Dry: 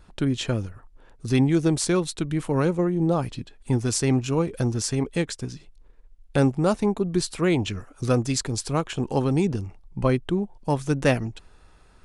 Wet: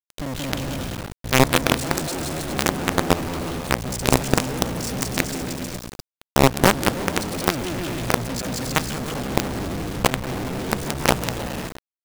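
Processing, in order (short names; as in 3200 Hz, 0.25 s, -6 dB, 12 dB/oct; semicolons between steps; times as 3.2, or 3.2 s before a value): cycle switcher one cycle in 2, muted; bouncing-ball echo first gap 0.18 s, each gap 0.75×, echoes 5; companded quantiser 2-bit; gain -1 dB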